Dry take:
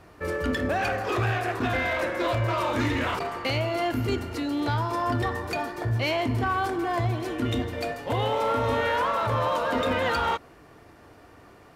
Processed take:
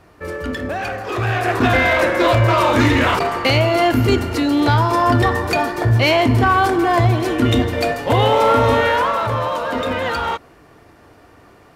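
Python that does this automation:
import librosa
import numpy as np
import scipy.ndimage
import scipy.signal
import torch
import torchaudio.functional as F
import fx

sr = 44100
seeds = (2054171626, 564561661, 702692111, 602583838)

y = fx.gain(x, sr, db=fx.line((1.07, 2.0), (1.57, 11.5), (8.59, 11.5), (9.5, 4.0)))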